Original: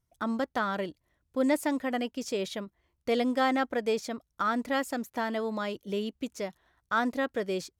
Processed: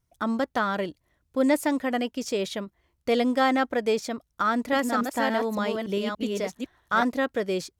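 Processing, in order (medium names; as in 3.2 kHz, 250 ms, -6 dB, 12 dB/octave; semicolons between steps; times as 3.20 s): 4.44–7.03 s: chunks repeated in reverse 285 ms, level -3 dB; vibrato 3 Hz 14 cents; trim +4 dB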